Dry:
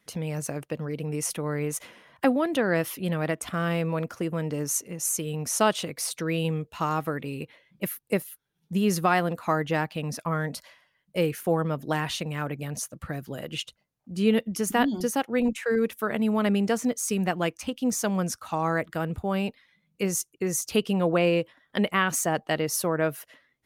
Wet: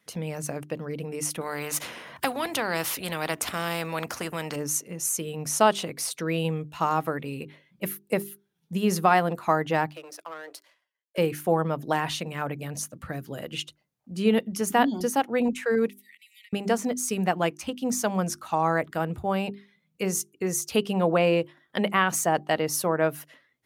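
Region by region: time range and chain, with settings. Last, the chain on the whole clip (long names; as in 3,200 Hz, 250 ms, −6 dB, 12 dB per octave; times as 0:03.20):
0:01.41–0:04.56: notch filter 3,300 Hz, Q 29 + every bin compressed towards the loudest bin 2 to 1
0:09.90–0:11.18: Butterworth high-pass 310 Hz 96 dB per octave + downward compressor 2.5 to 1, threshold −34 dBFS + power curve on the samples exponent 1.4
0:15.89–0:16.53: linear-phase brick-wall high-pass 1,800 Hz + downward compressor 16 to 1, threshold −48 dBFS
whole clip: high-pass filter 70 Hz; dynamic equaliser 820 Hz, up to +5 dB, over −38 dBFS, Q 1.7; mains-hum notches 50/100/150/200/250/300/350/400 Hz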